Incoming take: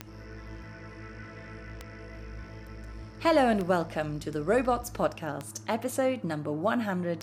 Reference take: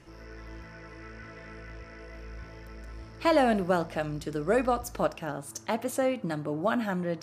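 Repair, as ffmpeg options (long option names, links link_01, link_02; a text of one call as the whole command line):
ffmpeg -i in.wav -af "adeclick=threshold=4,bandreject=frequency=105.2:width_type=h:width=4,bandreject=frequency=210.4:width_type=h:width=4,bandreject=frequency=315.6:width_type=h:width=4" out.wav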